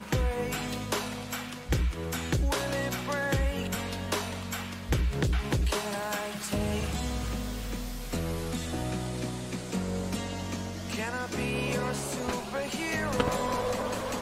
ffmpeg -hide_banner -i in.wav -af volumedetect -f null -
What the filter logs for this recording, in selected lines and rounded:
mean_volume: -30.9 dB
max_volume: -12.9 dB